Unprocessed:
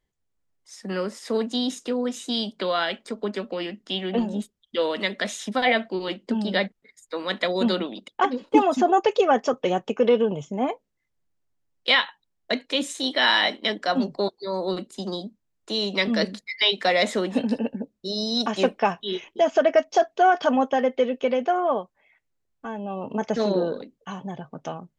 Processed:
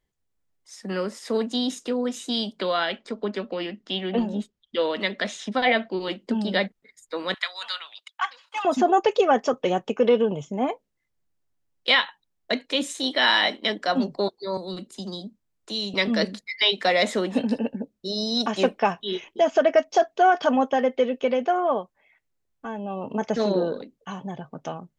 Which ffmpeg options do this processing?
-filter_complex "[0:a]asettb=1/sr,asplit=3[s0][s1][s2];[s0]atrim=end=2.774[s3];[s1]atrim=start=2.77:end=5.97,asetpts=PTS-STARTPTS,afade=t=in:d=0.004:c=qsin,afade=t=out:st=3.196:d=0.004:c=qsin,lowpass=5800[s4];[s2]atrim=start=5.966[s5];[s3][s4]acrossfade=d=0.004:c1=hsin:c2=qsin[s6];[s6][s5]acrossfade=d=0.004:c1=qsin:c2=hsin,asettb=1/sr,asplit=3[s7][s8][s9];[s7]atrim=end=7.344[s10];[s8]atrim=start=7.34:end=8.65,asetpts=PTS-STARTPTS,afade=t=in:d=0.004:c=qsin,afade=t=out:st=1.306:d=0.004:c=qsin,highpass=f=1100:w=0.5412,highpass=f=1100:w=1.3066[s11];[s9]atrim=start=8.646[s12];[s10][s11]acrossfade=d=0.004:c1=hsin:c2=qsin[s13];[s13][s12]acrossfade=d=0.004:c1=qsin:c2=hsin,asettb=1/sr,asplit=3[s14][s15][s16];[s14]atrim=end=14.574[s17];[s15]atrim=start=14.57:end=15.94,asetpts=PTS-STARTPTS,afade=t=in:d=0.004:c=qsin,afade=t=out:st=1.366:d=0.004:c=qsin,acrossover=split=230|3000[s18][s19][s20];[s19]acompressor=threshold=0.00631:ratio=2:attack=3.2:release=140:knee=2.83:detection=peak[s21];[s18][s21][s20]amix=inputs=3:normalize=0[s22];[s16]atrim=start=15.936[s23];[s17][s22]acrossfade=d=0.004:c1=hsin:c2=qsin[s24];[s24][s23]acrossfade=d=0.004:c1=qsin:c2=hsin"

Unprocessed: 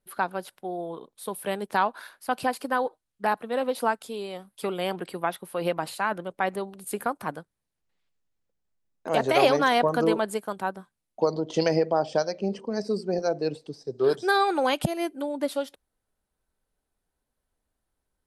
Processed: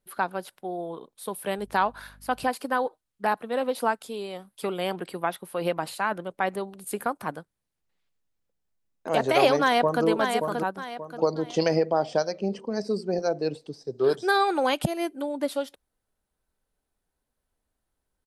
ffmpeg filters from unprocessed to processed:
-filter_complex "[0:a]asettb=1/sr,asplit=3[s0][s1][s2];[s0]atrim=end=1.584[s3];[s1]atrim=start=1.58:end=2.49,asetpts=PTS-STARTPTS,afade=t=in:d=0.004:c=qsin,afade=t=out:st=0.906:d=0.004:c=qsin,aeval=exprs='val(0)+0.00251*(sin(2*PI*50*n/s)+sin(2*PI*2*50*n/s)/2+sin(2*PI*3*50*n/s)/3+sin(2*PI*4*50*n/s)/4+sin(2*PI*5*50*n/s)/5)':c=same[s4];[s2]atrim=start=2.486[s5];[s3][s4]acrossfade=d=0.004:c1=hsin:c2=qsin[s6];[s6][s5]acrossfade=d=0.004:c1=qsin:c2=hsin,asplit=2[s7][s8];[s8]afade=t=in:st=9.61:d=0.01,afade=t=out:st=10.05:d=0.01,aecho=0:1:580|1160|1740|2320:0.530884|0.18581|0.0650333|0.0227617[s9];[s7][s9]amix=inputs=2:normalize=0"

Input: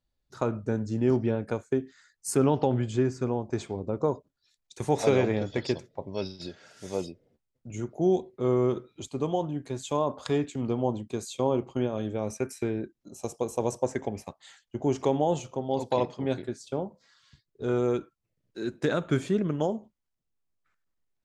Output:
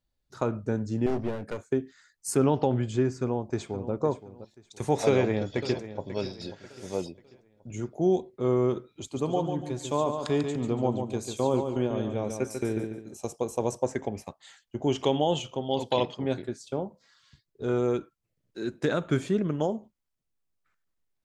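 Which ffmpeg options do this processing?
-filter_complex "[0:a]asettb=1/sr,asplit=3[s0][s1][s2];[s0]atrim=end=1.064[s3];[s1]atrim=start=1.06:end=1.64,asetpts=PTS-STARTPTS,afade=t=in:d=0.004:c=qsin,afade=t=out:st=0.576:d=0.004:c=qsin,aeval=exprs='clip(val(0),-1,0.0211)':c=same[s4];[s2]atrim=start=1.636[s5];[s3][s4]acrossfade=d=0.004:c1=hsin:c2=qsin[s6];[s6][s5]acrossfade=d=0.004:c1=qsin:c2=hsin,asplit=2[s7][s8];[s8]afade=t=in:st=3.19:d=0.01,afade=t=out:st=3.92:d=0.01,aecho=0:1:520|1040|1560:0.211349|0.0634047|0.0190214[s9];[s7][s9]amix=inputs=2:normalize=0,asplit=2[s10][s11];[s11]afade=t=in:st=5.08:d=0.01,afade=t=out:st=6.12:d=0.01,aecho=0:1:540|1080|1620|2160:0.223872|0.0895488|0.0358195|0.0143278[s12];[s10][s12]amix=inputs=2:normalize=0,asettb=1/sr,asplit=3[s13][s14][s15];[s13]atrim=end=8.924[s16];[s14]atrim=start=8.92:end=13.17,asetpts=PTS-STARTPTS,afade=t=in:d=0.004:c=qsin,afade=t=out:st=4.246:d=0.004:c=qsin,aecho=1:1:143|286|429|572:0.473|0.151|0.0485|0.0155,atrim=end_sample=187425[s17];[s15]atrim=start=13.166[s18];[s16][s17]acrossfade=d=0.004:c1=hsin:c2=qsin[s19];[s19][s18]acrossfade=d=0.004:c1=qsin:c2=hsin,asettb=1/sr,asplit=3[s20][s21][s22];[s20]atrim=end=14.874[s23];[s21]atrim=start=14.87:end=16.15,asetpts=PTS-STARTPTS,afade=t=in:d=0.004:c=qsin,afade=t=out:st=1.276:d=0.004:c=qsin,equalizer=f=3100:w=3.2:g=14.5[s24];[s22]atrim=start=16.146[s25];[s23][s24]acrossfade=d=0.004:c1=hsin:c2=qsin[s26];[s26][s25]acrossfade=d=0.004:c1=qsin:c2=hsin"

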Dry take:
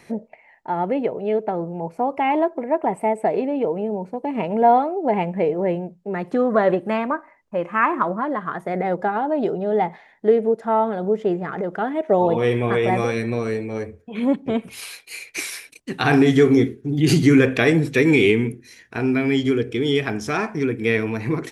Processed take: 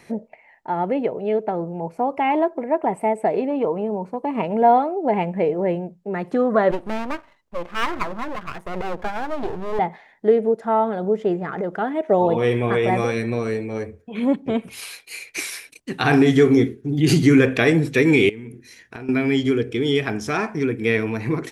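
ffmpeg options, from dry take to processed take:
-filter_complex "[0:a]asettb=1/sr,asplit=3[s0][s1][s2];[s0]atrim=end=3.504[s3];[s1]atrim=start=3.5:end=4.42,asetpts=PTS-STARTPTS,afade=t=in:d=0.004:c=qsin,afade=t=out:st=0.916:d=0.004:c=qsin,equalizer=f=1100:w=4.2:g=11[s4];[s2]atrim=start=4.416[s5];[s3][s4]acrossfade=d=0.004:c1=hsin:c2=qsin[s6];[s6][s5]acrossfade=d=0.004:c1=qsin:c2=hsin,asettb=1/sr,asplit=3[s7][s8][s9];[s7]atrim=end=6.714[s10];[s8]atrim=start=6.71:end=9.79,asetpts=PTS-STARTPTS,afade=t=in:d=0.004:c=qsin,afade=t=out:st=3.076:d=0.004:c=qsin,aeval=exprs='max(val(0),0)':c=same[s11];[s9]atrim=start=9.786[s12];[s10][s11]acrossfade=d=0.004:c1=hsin:c2=qsin[s13];[s13][s12]acrossfade=d=0.004:c1=qsin:c2=hsin,asettb=1/sr,asplit=3[s14][s15][s16];[s14]atrim=end=18.294[s17];[s15]atrim=start=18.29:end=19.09,asetpts=PTS-STARTPTS,afade=t=in:d=0.004:c=qsin,afade=t=out:st=0.796:d=0.004:c=qsin,acompressor=threshold=0.0316:ratio=20:attack=3.2:release=140:knee=1:detection=peak[s18];[s16]atrim=start=19.086[s19];[s17][s18]acrossfade=d=0.004:c1=hsin:c2=qsin[s20];[s20][s19]acrossfade=d=0.004:c1=qsin:c2=hsin"

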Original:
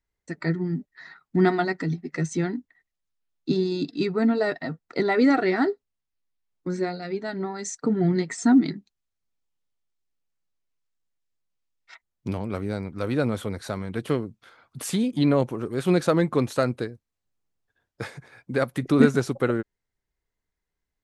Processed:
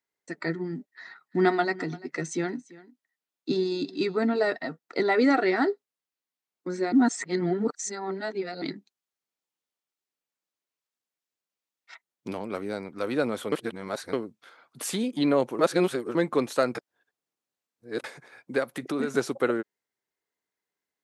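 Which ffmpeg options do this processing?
-filter_complex "[0:a]asettb=1/sr,asplit=3[s0][s1][s2];[s0]atrim=end=0.924[s3];[s1]atrim=start=0.92:end=4.56,asetpts=PTS-STARTPTS,afade=t=in:d=0.004:c=qsin,afade=t=out:st=3.636:d=0.004:c=qsin,aecho=1:1:342:0.0944,atrim=end_sample=160524[s4];[s2]atrim=start=4.556[s5];[s3][s4]acrossfade=d=0.004:c1=hsin:c2=qsin[s6];[s6][s5]acrossfade=d=0.004:c1=qsin:c2=hsin,asplit=3[s7][s8][s9];[s7]afade=t=out:st=18.59:d=0.02[s10];[s8]acompressor=threshold=0.0562:ratio=2.5:attack=3.2:release=140:knee=1:detection=peak,afade=t=in:st=18.59:d=0.02,afade=t=out:st=19.1:d=0.02[s11];[s9]afade=t=in:st=19.1:d=0.02[s12];[s10][s11][s12]amix=inputs=3:normalize=0,asplit=9[s13][s14][s15][s16][s17][s18][s19][s20][s21];[s13]atrim=end=6.922[s22];[s14]atrim=start=6.918:end=8.622,asetpts=PTS-STARTPTS,areverse[s23];[s15]atrim=start=8.618:end=13.522[s24];[s16]atrim=start=13.518:end=14.132,asetpts=PTS-STARTPTS,areverse[s25];[s17]atrim=start=14.128:end=15.592[s26];[s18]atrim=start=15.588:end=16.152,asetpts=PTS-STARTPTS,areverse[s27];[s19]atrim=start=16.148:end=16.752[s28];[s20]atrim=start=16.748:end=18.042,asetpts=PTS-STARTPTS,areverse[s29];[s21]atrim=start=18.038[s30];[s22][s23]acrossfade=d=0.004:c1=hsin:c2=hsin[s31];[s31][s24]acrossfade=d=0.004:c1=hsin:c2=hsin[s32];[s32][s25]acrossfade=d=0.004:c1=hsin:c2=hsin[s33];[s33][s26]acrossfade=d=0.004:c1=hsin:c2=hsin[s34];[s34][s27]acrossfade=d=0.004:c1=hsin:c2=hsin[s35];[s35][s28]acrossfade=d=0.004:c1=hsin:c2=hsin[s36];[s36][s29]acrossfade=d=0.004:c1=hsin:c2=hsin[s37];[s37][s30]acrossfade=d=0.004:c1=hsin:c2=hsin,highpass=280"

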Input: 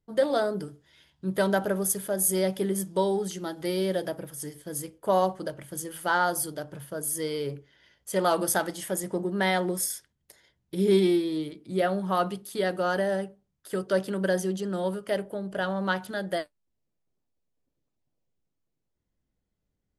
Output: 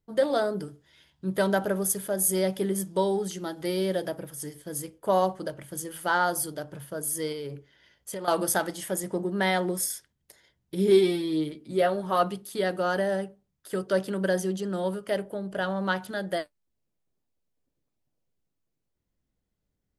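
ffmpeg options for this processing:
-filter_complex "[0:a]asettb=1/sr,asplit=3[s0][s1][s2];[s0]atrim=end=7.324[s3];[s1]atrim=start=7.32:end=8.28,asetpts=PTS-STARTPTS,afade=t=in:d=0.004:c=qsin,afade=t=out:st=0.956:d=0.004:c=qsin,acompressor=threshold=0.0251:ratio=6:attack=3.2:release=140:knee=1:detection=peak[s4];[s2]atrim=start=8.276[s5];[s3][s4]acrossfade=d=0.004:c1=hsin:c2=qsin[s6];[s6][s5]acrossfade=d=0.004:c1=qsin:c2=hsin,asettb=1/sr,asplit=3[s7][s8][s9];[s7]atrim=end=10.884[s10];[s8]atrim=start=10.88:end=12.23,asetpts=PTS-STARTPTS,afade=t=in:d=0.004:c=qsin,afade=t=out:st=1.346:d=0.004:c=qsin,asplit=2[s11][s12];[s12]adelay=13,volume=0.562[s13];[s11][s13]amix=inputs=2:normalize=0,atrim=end_sample=59535[s14];[s9]atrim=start=12.226[s15];[s10][s14]acrossfade=d=0.004:c1=hsin:c2=qsin[s16];[s16][s15]acrossfade=d=0.004:c1=qsin:c2=hsin"

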